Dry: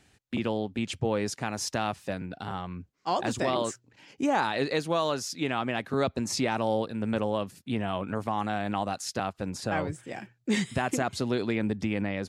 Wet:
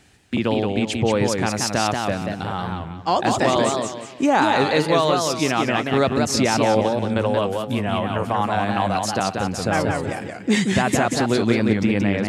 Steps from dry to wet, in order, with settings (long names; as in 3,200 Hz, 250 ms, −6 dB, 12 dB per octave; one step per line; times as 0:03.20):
0:06.81–0:09.07: multiband delay without the direct sound lows, highs 30 ms, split 260 Hz
feedback echo with a swinging delay time 181 ms, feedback 34%, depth 156 cents, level −4 dB
level +8 dB